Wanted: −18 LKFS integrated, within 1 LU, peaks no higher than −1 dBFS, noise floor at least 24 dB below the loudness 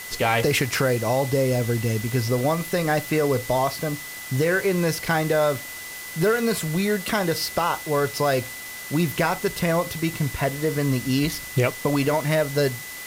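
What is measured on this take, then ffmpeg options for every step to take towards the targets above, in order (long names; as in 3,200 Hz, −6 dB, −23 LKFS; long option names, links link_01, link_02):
interfering tone 2,000 Hz; level of the tone −37 dBFS; background noise floor −36 dBFS; target noise floor −48 dBFS; integrated loudness −23.5 LKFS; sample peak −8.5 dBFS; target loudness −18.0 LKFS
→ -af "bandreject=frequency=2000:width=30"
-af "afftdn=noise_reduction=12:noise_floor=-36"
-af "volume=5.5dB"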